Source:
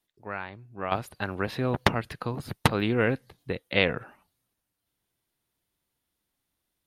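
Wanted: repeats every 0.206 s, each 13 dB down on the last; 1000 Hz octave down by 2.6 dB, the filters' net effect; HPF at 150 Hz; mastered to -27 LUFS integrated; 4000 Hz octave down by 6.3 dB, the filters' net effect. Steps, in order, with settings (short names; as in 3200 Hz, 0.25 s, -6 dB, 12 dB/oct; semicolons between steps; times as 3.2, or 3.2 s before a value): HPF 150 Hz; bell 1000 Hz -3 dB; bell 4000 Hz -8.5 dB; feedback echo 0.206 s, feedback 22%, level -13 dB; gain +3.5 dB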